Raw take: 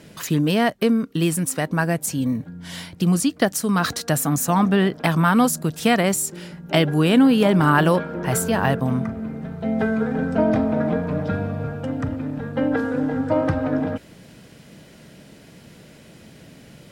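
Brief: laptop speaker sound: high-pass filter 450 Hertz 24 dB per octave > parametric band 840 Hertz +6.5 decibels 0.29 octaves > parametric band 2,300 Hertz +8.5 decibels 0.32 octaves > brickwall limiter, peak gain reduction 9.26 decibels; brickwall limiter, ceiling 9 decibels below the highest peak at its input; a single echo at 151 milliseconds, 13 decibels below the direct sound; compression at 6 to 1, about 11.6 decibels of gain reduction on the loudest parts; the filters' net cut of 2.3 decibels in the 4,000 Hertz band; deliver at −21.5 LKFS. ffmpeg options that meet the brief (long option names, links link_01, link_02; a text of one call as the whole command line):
ffmpeg -i in.wav -af "equalizer=frequency=4000:width_type=o:gain=-5,acompressor=threshold=-24dB:ratio=6,alimiter=limit=-19dB:level=0:latency=1,highpass=frequency=450:width=0.5412,highpass=frequency=450:width=1.3066,equalizer=frequency=840:width_type=o:width=0.29:gain=6.5,equalizer=frequency=2300:width_type=o:width=0.32:gain=8.5,aecho=1:1:151:0.224,volume=13.5dB,alimiter=limit=-11dB:level=0:latency=1" out.wav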